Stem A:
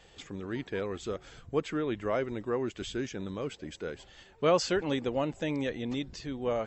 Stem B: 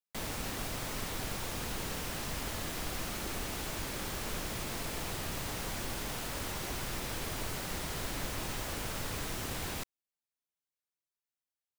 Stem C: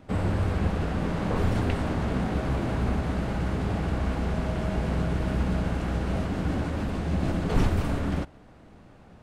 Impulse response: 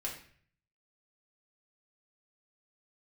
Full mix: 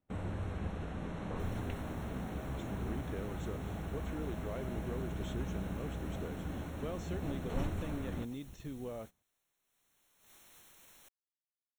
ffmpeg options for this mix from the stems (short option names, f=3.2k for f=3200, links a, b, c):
-filter_complex "[0:a]lowshelf=f=360:g=10.5,acompressor=threshold=-30dB:ratio=6,adelay=2400,volume=-9.5dB[a];[1:a]aeval=exprs='(mod(66.8*val(0)+1,2)-1)/66.8':c=same,aeval=exprs='(tanh(126*val(0)+0.15)-tanh(0.15))/126':c=same,adelay=1250,volume=-5dB,afade=t=in:st=9.62:d=0.68:silence=0.223872[b];[2:a]volume=-13dB[c];[a][b][c]amix=inputs=3:normalize=0,agate=range=-20dB:threshold=-49dB:ratio=16:detection=peak,asuperstop=centerf=4800:order=8:qfactor=4.6"